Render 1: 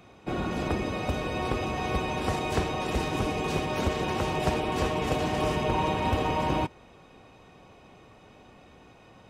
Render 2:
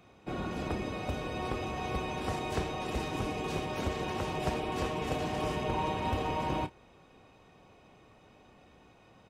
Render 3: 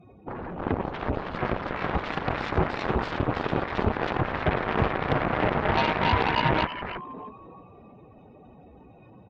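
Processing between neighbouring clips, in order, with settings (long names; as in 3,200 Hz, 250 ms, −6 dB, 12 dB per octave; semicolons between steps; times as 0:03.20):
double-tracking delay 30 ms −13 dB; level −6 dB
expanding power law on the bin magnitudes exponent 2.5; echo with shifted repeats 320 ms, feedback 32%, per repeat +60 Hz, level −4 dB; harmonic generator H 7 −11 dB, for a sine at −20 dBFS; level +7.5 dB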